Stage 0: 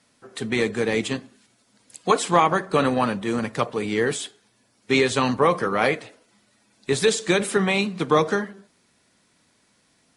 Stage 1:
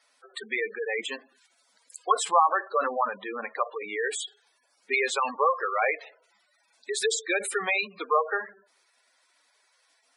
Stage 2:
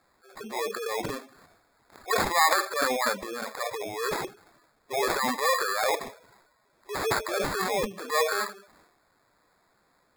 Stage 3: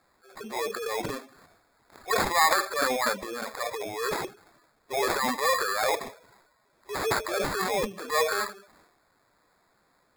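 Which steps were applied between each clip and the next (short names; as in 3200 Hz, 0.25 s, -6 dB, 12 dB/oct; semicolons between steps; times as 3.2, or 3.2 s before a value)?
HPF 650 Hz 12 dB/oct; spectral gate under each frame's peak -10 dB strong
sample-and-hold 15×; transient shaper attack -8 dB, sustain +9 dB
block floating point 5-bit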